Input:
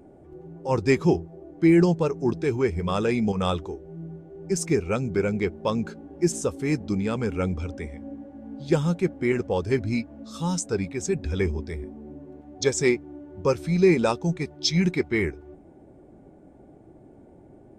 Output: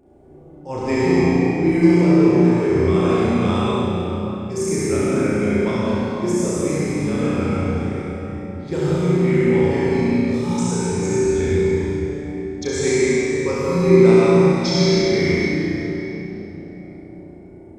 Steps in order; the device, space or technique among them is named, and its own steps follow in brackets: tunnel (flutter echo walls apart 5.8 m, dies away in 0.8 s; reverb RT60 3.9 s, pre-delay 56 ms, DRR -7.5 dB); gain -6 dB

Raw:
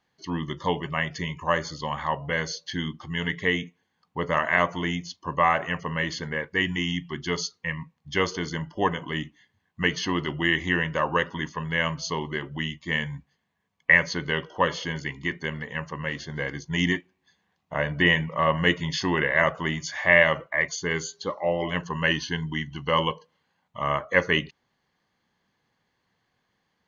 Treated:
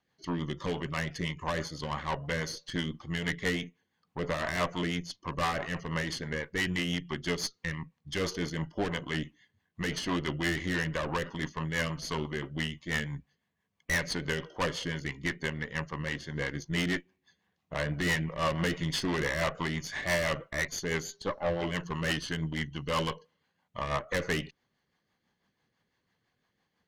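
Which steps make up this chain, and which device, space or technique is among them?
overdriven rotary cabinet (tube stage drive 26 dB, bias 0.7; rotary speaker horn 6 Hz); gain +2.5 dB

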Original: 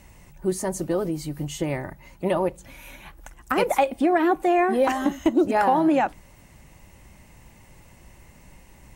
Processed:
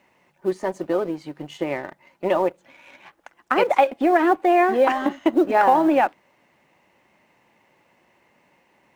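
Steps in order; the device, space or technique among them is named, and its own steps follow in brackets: phone line with mismatched companding (BPF 320–3200 Hz; G.711 law mismatch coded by A); gain +4.5 dB

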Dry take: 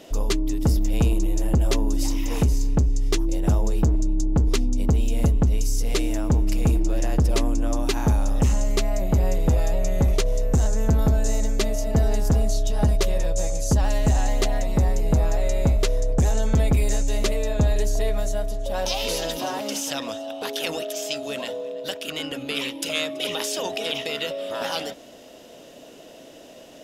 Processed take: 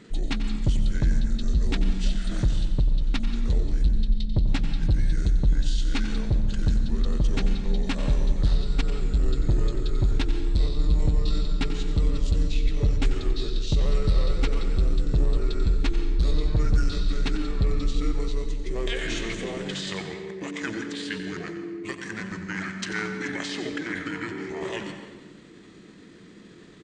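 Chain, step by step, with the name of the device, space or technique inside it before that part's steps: monster voice (pitch shift -6.5 st; formant shift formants -2.5 st; low shelf 200 Hz +3 dB; echo 91 ms -12 dB; reverb RT60 1.3 s, pre-delay 0.116 s, DRR 8.5 dB); gain -4.5 dB

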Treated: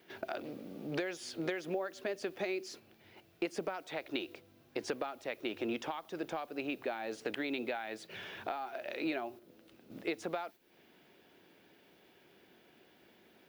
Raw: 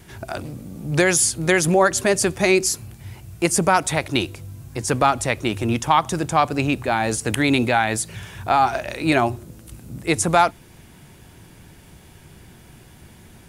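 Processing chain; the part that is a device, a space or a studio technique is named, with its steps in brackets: baby monitor (BPF 380–3500 Hz; compressor 12:1, threshold -31 dBFS, peak gain reduction 20.5 dB; white noise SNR 28 dB; gate -47 dBFS, range -7 dB); graphic EQ 125/1000/2000/8000 Hz -7/-9/-4/-11 dB; gain +1 dB

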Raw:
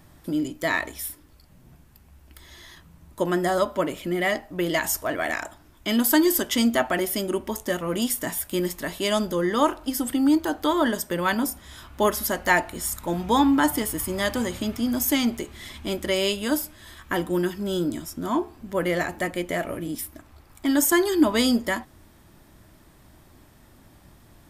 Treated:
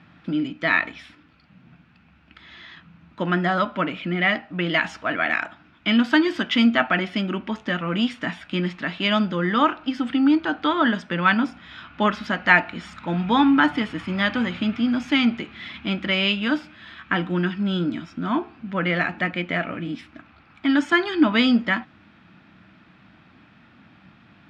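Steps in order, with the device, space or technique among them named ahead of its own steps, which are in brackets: kitchen radio (speaker cabinet 170–3800 Hz, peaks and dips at 190 Hz +6 dB, 390 Hz -10 dB, 570 Hz -7 dB, 970 Hz -4 dB, 1400 Hz +7 dB, 2500 Hz +8 dB); low shelf 140 Hz +4 dB; gain +3 dB

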